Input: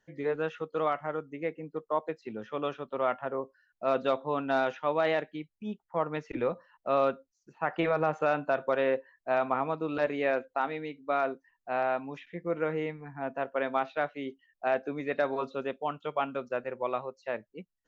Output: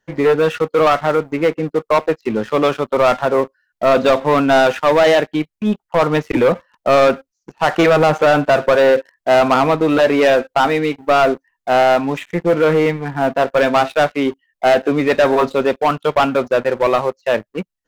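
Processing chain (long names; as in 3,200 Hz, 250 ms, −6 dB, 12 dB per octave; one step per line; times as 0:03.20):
leveller curve on the samples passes 3
level +9 dB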